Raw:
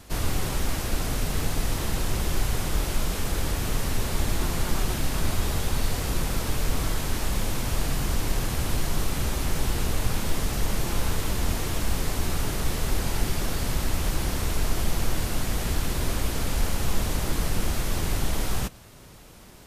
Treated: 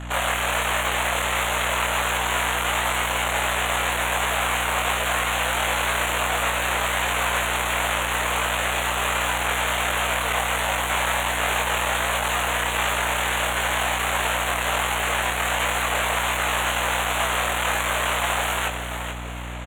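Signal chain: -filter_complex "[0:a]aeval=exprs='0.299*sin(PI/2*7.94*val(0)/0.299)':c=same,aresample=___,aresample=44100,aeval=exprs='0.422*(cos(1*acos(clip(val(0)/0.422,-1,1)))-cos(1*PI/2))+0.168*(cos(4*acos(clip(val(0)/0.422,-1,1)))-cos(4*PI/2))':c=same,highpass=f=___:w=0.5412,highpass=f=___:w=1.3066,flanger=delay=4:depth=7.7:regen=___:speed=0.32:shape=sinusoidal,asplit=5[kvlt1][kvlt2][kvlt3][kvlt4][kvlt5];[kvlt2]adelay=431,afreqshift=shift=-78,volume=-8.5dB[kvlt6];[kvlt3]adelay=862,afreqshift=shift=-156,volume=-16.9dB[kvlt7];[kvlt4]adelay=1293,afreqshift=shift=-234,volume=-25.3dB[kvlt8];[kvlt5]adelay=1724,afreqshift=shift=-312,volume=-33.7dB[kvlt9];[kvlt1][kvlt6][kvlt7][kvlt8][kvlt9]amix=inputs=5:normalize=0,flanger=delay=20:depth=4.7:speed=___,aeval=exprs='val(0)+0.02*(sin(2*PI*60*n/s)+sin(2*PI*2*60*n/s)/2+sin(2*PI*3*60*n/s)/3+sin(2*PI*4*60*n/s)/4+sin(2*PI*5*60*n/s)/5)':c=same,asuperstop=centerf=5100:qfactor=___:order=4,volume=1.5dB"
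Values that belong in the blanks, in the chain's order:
16000, 610, 610, 88, 1.4, 1.1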